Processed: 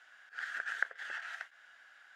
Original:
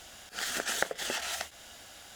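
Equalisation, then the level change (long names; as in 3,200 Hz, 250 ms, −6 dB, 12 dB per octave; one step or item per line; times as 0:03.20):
resonant band-pass 1,600 Hz, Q 5.2
+2.0 dB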